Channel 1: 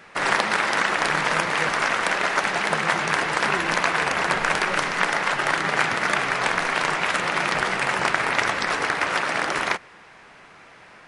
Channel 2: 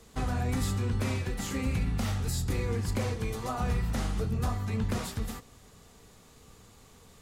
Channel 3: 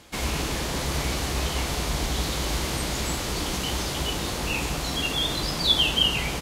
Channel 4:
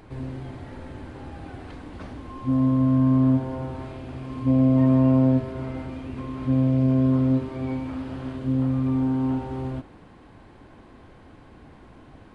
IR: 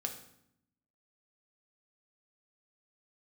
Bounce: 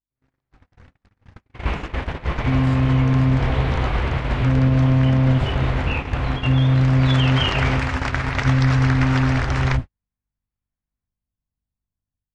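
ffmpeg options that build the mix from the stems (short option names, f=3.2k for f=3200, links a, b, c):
-filter_complex "[0:a]lowpass=f=7k:w=0.5412,lowpass=f=7k:w=1.3066,volume=-11dB,afade=t=in:st=6.72:d=0.68:silence=0.251189[a];[1:a]lowpass=2.9k,acompressor=threshold=-38dB:ratio=12,adelay=350,volume=2dB[b];[2:a]lowpass=f=2.6k:w=0.5412,lowpass=f=2.6k:w=1.3066,equalizer=f=230:t=o:w=1.3:g=-5.5,adelay=1400,volume=-3dB[c];[3:a]asubboost=boost=7:cutoff=110,volume=-4.5dB[d];[c][d]amix=inputs=2:normalize=0,aeval=exprs='val(0)+0.00708*(sin(2*PI*50*n/s)+sin(2*PI*2*50*n/s)/2+sin(2*PI*3*50*n/s)/3+sin(2*PI*4*50*n/s)/4+sin(2*PI*5*50*n/s)/5)':c=same,alimiter=limit=-18dB:level=0:latency=1:release=61,volume=0dB[e];[a][b][e]amix=inputs=3:normalize=0,agate=range=-53dB:threshold=-29dB:ratio=16:detection=peak,dynaudnorm=f=190:g=3:m=8dB"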